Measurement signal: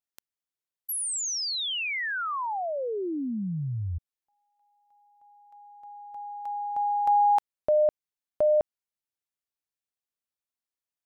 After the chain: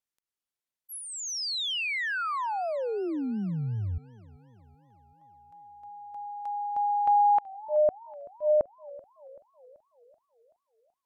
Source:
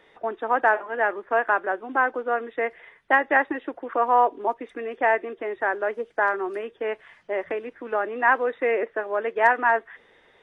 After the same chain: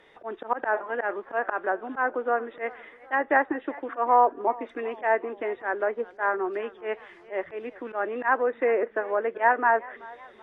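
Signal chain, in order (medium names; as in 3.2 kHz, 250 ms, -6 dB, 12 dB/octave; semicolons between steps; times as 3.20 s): slow attack 105 ms; low-pass that closes with the level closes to 1.7 kHz, closed at -21.5 dBFS; modulated delay 380 ms, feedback 54%, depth 111 cents, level -21.5 dB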